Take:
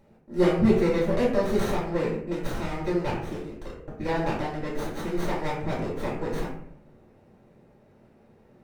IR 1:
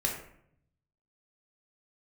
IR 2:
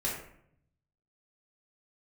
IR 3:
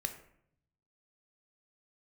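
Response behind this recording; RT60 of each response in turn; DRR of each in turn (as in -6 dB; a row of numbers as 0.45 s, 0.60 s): 2; 0.70 s, 0.70 s, 0.70 s; -2.0 dB, -6.5 dB, 5.5 dB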